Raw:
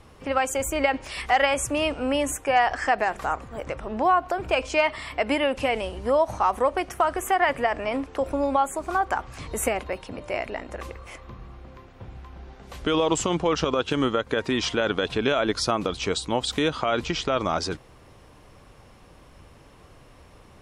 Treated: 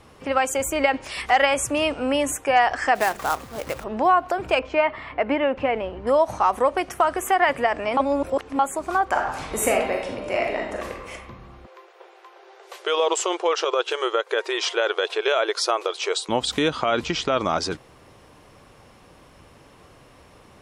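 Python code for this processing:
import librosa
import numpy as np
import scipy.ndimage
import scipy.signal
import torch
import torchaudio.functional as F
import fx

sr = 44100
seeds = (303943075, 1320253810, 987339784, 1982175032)

y = fx.quant_companded(x, sr, bits=4, at=(2.95, 3.84))
y = fx.lowpass(y, sr, hz=2000.0, slope=12, at=(4.59, 6.07))
y = fx.reverb_throw(y, sr, start_s=9.1, length_s=2.03, rt60_s=0.88, drr_db=0.0)
y = fx.brickwall_highpass(y, sr, low_hz=340.0, at=(11.66, 16.29))
y = fx.edit(y, sr, fx.reverse_span(start_s=7.97, length_s=0.62), tone=tone)
y = fx.low_shelf(y, sr, hz=77.0, db=-11.0)
y = y * librosa.db_to_amplitude(2.5)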